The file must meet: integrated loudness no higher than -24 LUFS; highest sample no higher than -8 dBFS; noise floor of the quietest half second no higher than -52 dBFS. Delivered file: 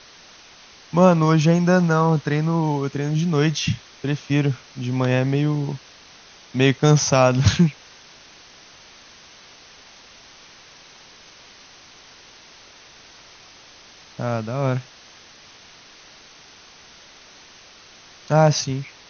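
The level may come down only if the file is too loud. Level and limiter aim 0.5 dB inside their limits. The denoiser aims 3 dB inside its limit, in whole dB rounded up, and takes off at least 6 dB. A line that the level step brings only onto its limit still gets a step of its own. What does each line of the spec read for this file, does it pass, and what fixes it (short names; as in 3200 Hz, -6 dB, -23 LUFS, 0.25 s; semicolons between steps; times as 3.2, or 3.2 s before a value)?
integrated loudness -20.0 LUFS: fail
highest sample -3.5 dBFS: fail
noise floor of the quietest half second -47 dBFS: fail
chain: denoiser 6 dB, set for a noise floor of -47 dBFS; gain -4.5 dB; limiter -8.5 dBFS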